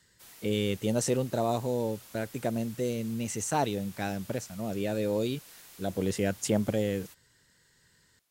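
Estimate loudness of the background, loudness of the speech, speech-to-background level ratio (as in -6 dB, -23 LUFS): -49.5 LUFS, -31.5 LUFS, 18.0 dB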